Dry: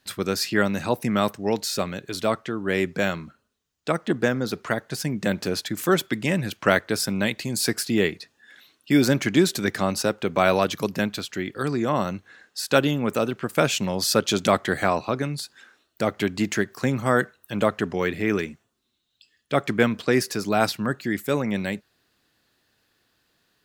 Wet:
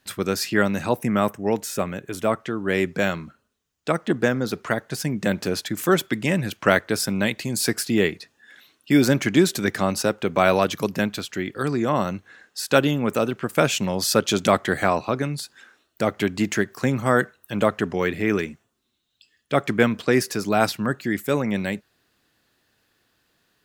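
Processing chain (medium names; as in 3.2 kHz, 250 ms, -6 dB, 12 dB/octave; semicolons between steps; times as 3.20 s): peaking EQ 4.3 kHz -4 dB 0.61 oct, from 1.01 s -15 dB, from 2.40 s -2.5 dB; trim +1.5 dB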